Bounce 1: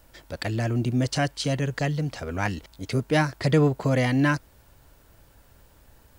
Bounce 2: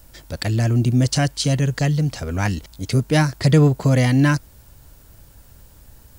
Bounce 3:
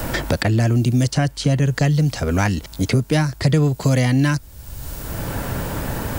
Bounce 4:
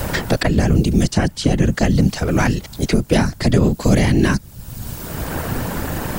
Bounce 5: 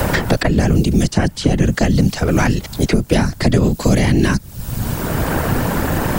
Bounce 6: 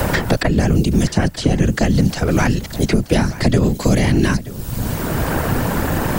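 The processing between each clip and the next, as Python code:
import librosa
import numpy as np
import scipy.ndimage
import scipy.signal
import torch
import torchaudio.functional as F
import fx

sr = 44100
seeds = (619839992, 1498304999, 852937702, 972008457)

y1 = fx.bass_treble(x, sr, bass_db=7, treble_db=8)
y1 = y1 * librosa.db_to_amplitude(2.0)
y2 = fx.band_squash(y1, sr, depth_pct=100)
y3 = fx.whisperise(y2, sr, seeds[0])
y3 = y3 * librosa.db_to_amplitude(2.0)
y4 = fx.band_squash(y3, sr, depth_pct=70)
y4 = y4 * librosa.db_to_amplitude(1.0)
y5 = fx.echo_feedback(y4, sr, ms=929, feedback_pct=29, wet_db=-17.0)
y5 = y5 * librosa.db_to_amplitude(-1.0)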